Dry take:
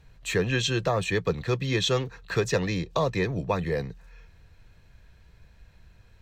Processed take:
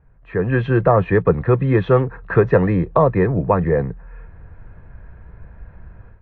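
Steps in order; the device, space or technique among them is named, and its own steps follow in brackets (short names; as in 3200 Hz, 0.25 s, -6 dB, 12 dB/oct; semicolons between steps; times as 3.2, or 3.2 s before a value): action camera in a waterproof case (LPF 1600 Hz 24 dB/oct; AGC gain up to 14.5 dB; AAC 48 kbps 22050 Hz)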